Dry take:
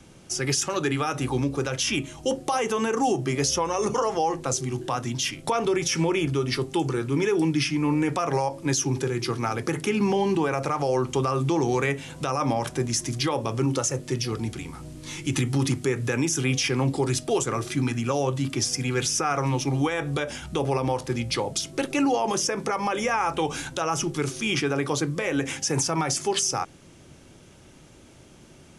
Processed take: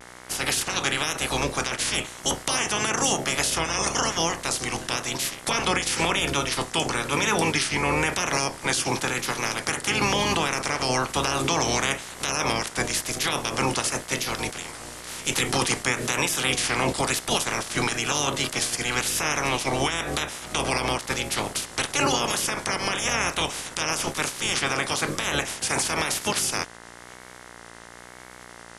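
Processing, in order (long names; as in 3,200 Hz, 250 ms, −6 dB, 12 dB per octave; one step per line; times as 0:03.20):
ceiling on every frequency bin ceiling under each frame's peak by 27 dB
hum with harmonics 60 Hz, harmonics 36, −46 dBFS 0 dB per octave
pitch vibrato 1 Hz 63 cents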